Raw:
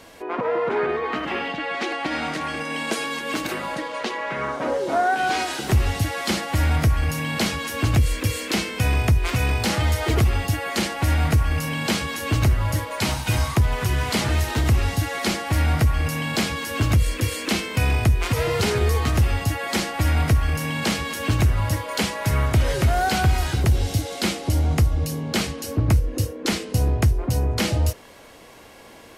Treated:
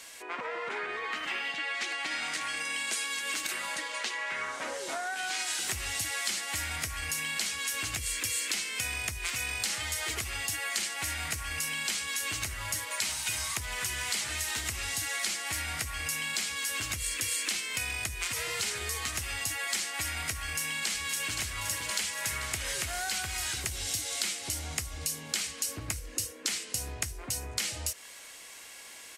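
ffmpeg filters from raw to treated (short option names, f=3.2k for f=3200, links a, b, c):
-filter_complex "[0:a]asplit=2[a][b];[b]afade=t=in:st=20.42:d=0.01,afade=t=out:st=21.38:d=0.01,aecho=0:1:520|1040|1560|2080|2600|3120|3640|4160|4680|5200|5720:0.398107|0.278675|0.195073|0.136551|0.0955855|0.0669099|0.0468369|0.0327858|0.0229501|0.0160651|0.0112455[c];[a][c]amix=inputs=2:normalize=0,tiltshelf=f=1.1k:g=-9,acompressor=threshold=-25dB:ratio=6,equalizer=f=125:t=o:w=1:g=-3,equalizer=f=2k:t=o:w=1:g=4,equalizer=f=8k:t=o:w=1:g=9,volume=-8.5dB"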